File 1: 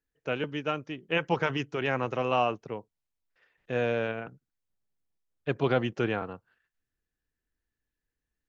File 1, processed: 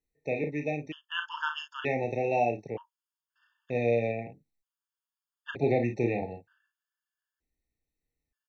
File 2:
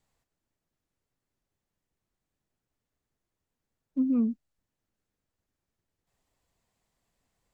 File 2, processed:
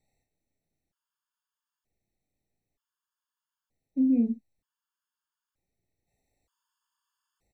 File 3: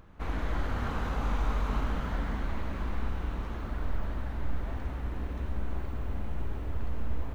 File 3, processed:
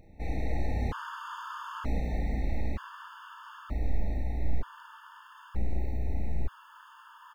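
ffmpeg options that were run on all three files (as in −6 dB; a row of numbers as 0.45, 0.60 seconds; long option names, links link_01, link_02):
-af "aecho=1:1:34|53:0.447|0.299,afftfilt=real='re*gt(sin(2*PI*0.54*pts/sr)*(1-2*mod(floor(b*sr/1024/900),2)),0)':imag='im*gt(sin(2*PI*0.54*pts/sr)*(1-2*mod(floor(b*sr/1024/900),2)),0)':win_size=1024:overlap=0.75"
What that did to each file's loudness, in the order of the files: −1.0, +2.0, −0.5 LU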